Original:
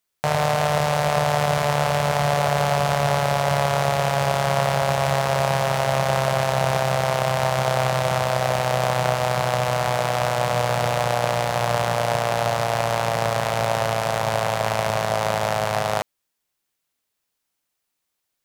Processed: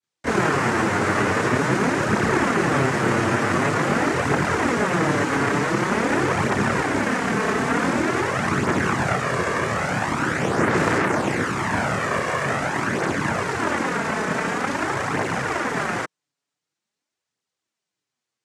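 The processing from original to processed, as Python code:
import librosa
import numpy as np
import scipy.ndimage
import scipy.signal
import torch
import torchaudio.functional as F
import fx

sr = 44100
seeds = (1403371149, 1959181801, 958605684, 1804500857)

y = fx.tilt_eq(x, sr, slope=-2.0)
y = fx.noise_vocoder(y, sr, seeds[0], bands=3)
y = fx.chorus_voices(y, sr, voices=2, hz=0.23, base_ms=26, depth_ms=5.0, mix_pct=70)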